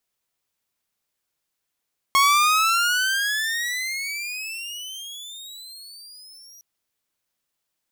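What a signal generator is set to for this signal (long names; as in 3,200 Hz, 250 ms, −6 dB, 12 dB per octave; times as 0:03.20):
pitch glide with a swell saw, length 4.46 s, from 1,090 Hz, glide +29 semitones, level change −30 dB, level −11 dB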